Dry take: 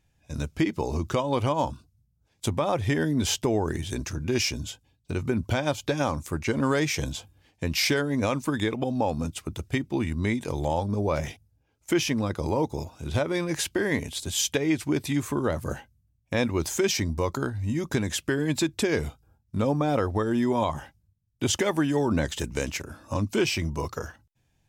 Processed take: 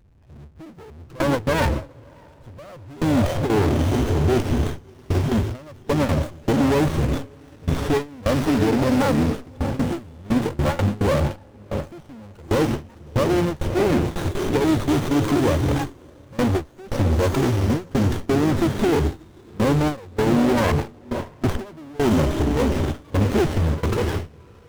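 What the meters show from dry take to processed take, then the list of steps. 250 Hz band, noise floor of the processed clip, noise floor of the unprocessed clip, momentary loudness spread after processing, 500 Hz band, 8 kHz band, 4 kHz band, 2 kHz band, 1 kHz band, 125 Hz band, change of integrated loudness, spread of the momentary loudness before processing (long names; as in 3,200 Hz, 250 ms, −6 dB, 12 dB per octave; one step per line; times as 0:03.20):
+6.0 dB, −47 dBFS, −70 dBFS, 11 LU, +5.0 dB, −5.0 dB, −1.5 dB, +1.5 dB, +4.5 dB, +7.5 dB, +5.5 dB, 10 LU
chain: expanding power law on the bin magnitudes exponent 1.8
power curve on the samples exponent 0.35
feedback delay with all-pass diffusion 623 ms, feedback 50%, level −6 dB
noise gate with hold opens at −11 dBFS
windowed peak hold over 17 samples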